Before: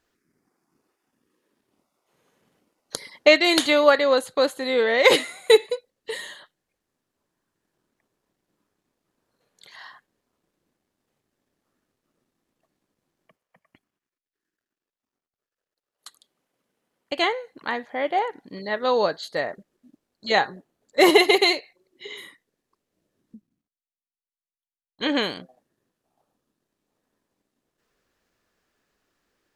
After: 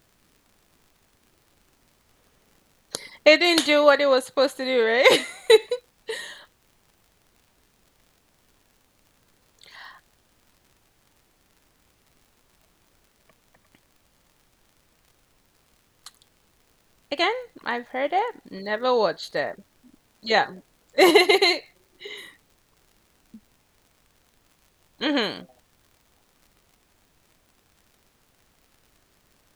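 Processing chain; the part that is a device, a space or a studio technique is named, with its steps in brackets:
vinyl LP (surface crackle; pink noise bed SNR 37 dB)

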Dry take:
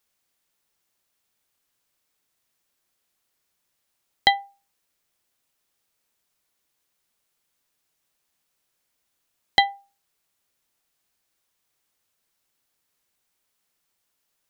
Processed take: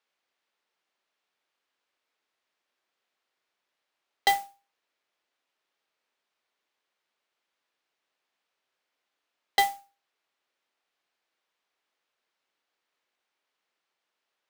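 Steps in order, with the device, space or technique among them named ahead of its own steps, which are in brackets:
carbon microphone (band-pass filter 350–3,500 Hz; soft clipping −14 dBFS, distortion −10 dB; noise that follows the level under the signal 13 dB)

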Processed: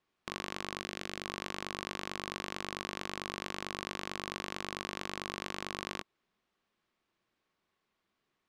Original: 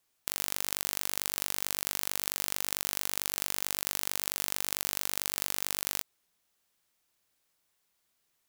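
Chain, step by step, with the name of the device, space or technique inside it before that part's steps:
inside a cardboard box (low-pass filter 3,100 Hz 12 dB per octave; hollow resonant body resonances 210/350/1,100 Hz, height 7 dB, ringing for 30 ms)
0:00.80–0:01.25: parametric band 1,000 Hz −11.5 dB 0.4 octaves

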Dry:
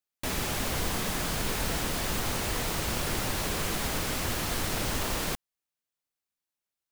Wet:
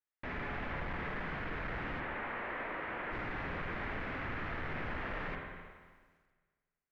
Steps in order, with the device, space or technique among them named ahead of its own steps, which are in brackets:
0:02.00–0:03.12: three-way crossover with the lows and the highs turned down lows −16 dB, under 260 Hz, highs −24 dB, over 3,500 Hz
spring reverb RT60 1.6 s, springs 47/54 ms, chirp 50 ms, DRR 3.5 dB
overdriven synthesiser ladder filter (soft clipping −26.5 dBFS, distortion −13 dB; transistor ladder low-pass 2,300 Hz, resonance 45%)
feedback echo at a low word length 83 ms, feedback 55%, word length 12 bits, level −14 dB
level +1.5 dB

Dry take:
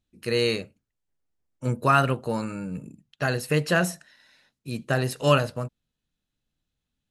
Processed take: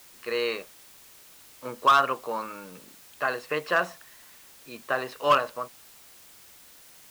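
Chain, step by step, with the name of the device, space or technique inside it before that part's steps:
drive-through speaker (band-pass filter 470–3,200 Hz; parametric band 1,100 Hz +11.5 dB 0.31 octaves; hard clipping −12 dBFS, distortion −12 dB; white noise bed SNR 22 dB)
level −1 dB

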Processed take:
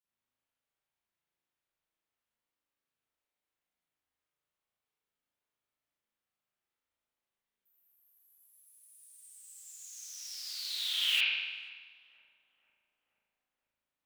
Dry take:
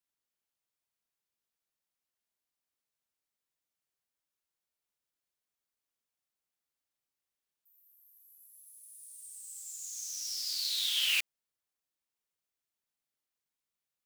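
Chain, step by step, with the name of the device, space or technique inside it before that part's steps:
dub delay into a spring reverb (feedback echo with a low-pass in the loop 485 ms, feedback 77%, low-pass 1,100 Hz, level −18 dB; spring reverb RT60 1.3 s, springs 37 ms, chirp 45 ms, DRR −9 dB)
level −6.5 dB

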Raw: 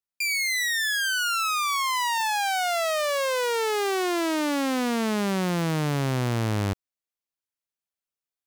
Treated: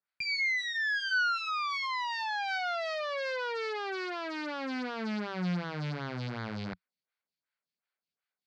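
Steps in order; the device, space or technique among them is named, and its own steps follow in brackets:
vibe pedal into a guitar amplifier (phaser with staggered stages 2.7 Hz; tube saturation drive 41 dB, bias 0.6; loudspeaker in its box 80–4,600 Hz, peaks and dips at 97 Hz −5 dB, 180 Hz +6 dB, 330 Hz −6 dB, 1,500 Hz +8 dB, 2,200 Hz +6 dB, 4,500 Hz +8 dB)
level +7 dB

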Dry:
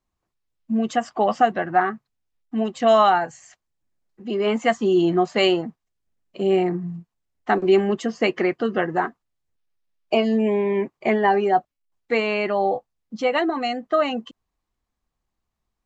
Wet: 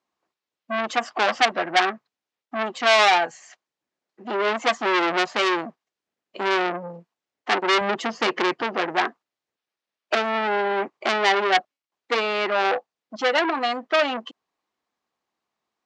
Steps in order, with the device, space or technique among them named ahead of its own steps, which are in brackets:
public-address speaker with an overloaded transformer (saturating transformer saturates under 3,400 Hz; band-pass filter 330–5,800 Hz)
0:07.81–0:08.62: low-shelf EQ 180 Hz +10 dB
level +4.5 dB

